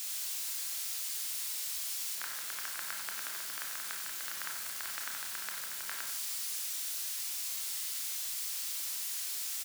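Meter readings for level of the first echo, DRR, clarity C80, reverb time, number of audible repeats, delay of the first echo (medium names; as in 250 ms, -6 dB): -9.0 dB, 0.5 dB, 5.5 dB, 0.80 s, 1, 92 ms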